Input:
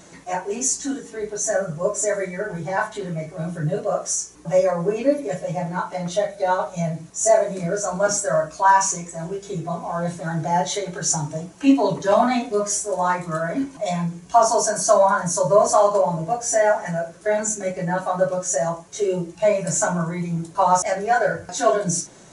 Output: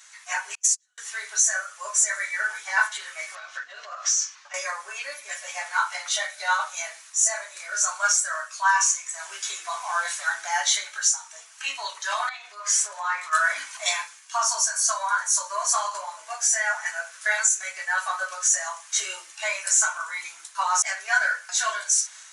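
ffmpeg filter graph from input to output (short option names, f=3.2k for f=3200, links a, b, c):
-filter_complex "[0:a]asettb=1/sr,asplit=3[a][b][c];[a]atrim=end=0.554[d];[b]atrim=start=0.55:end=0.98,asetpts=PTS-STARTPTS,afade=t=in:d=0.004:c=qsin,afade=t=out:st=0.426:d=0.004:c=qsin,highpass=460,agate=range=-38dB:threshold=-24dB:ratio=16:release=100:detection=peak[e];[c]atrim=start=0.976[f];[d][e]acrossfade=d=0.004:c1=hsin:c2=qsin[g];[g][f]acrossfade=d=0.004:c1=qsin:c2=hsin,asettb=1/sr,asplit=3[h][i][j];[h]atrim=end=3.354[k];[i]atrim=start=3.35:end=4.54,asetpts=PTS-STARTPTS,afade=t=in:d=0.004:c=qsin,afade=t=out:st=1.186:d=0.004:c=qsin,lowpass=f=5.5k:w=0.5412,lowpass=f=5.5k:w=1.3066,acompressor=threshold=-31dB:ratio=8:attack=3.2:release=140:knee=1:detection=peak[l];[j]atrim=start=4.536[m];[k][l]acrossfade=d=0.004:c1=hsin:c2=qsin[n];[n][m]acrossfade=d=0.004:c1=qsin:c2=hsin,asettb=1/sr,asplit=3[o][p][q];[o]atrim=end=12.294[r];[p]atrim=start=12.29:end=13.33,asetpts=PTS-STARTPTS,afade=t=in:d=0.004:c=qsin,afade=t=out:st=1.036:d=0.004:c=qsin,aemphasis=mode=reproduction:type=50fm,bandreject=f=68.33:t=h:w=4,bandreject=f=136.66:t=h:w=4,bandreject=f=204.99:t=h:w=4,acompressor=threshold=-29dB:ratio=4:attack=3.2:release=140:knee=1:detection=peak[s];[q]atrim=start=13.326[t];[r][s]acrossfade=d=0.004:c1=hsin:c2=qsin[u];[u][t]acrossfade=d=0.004:c1=qsin:c2=hsin,dynaudnorm=f=120:g=5:m=14dB,highpass=f=1.3k:w=0.5412,highpass=f=1.3k:w=1.3066,alimiter=limit=-9.5dB:level=0:latency=1:release=450"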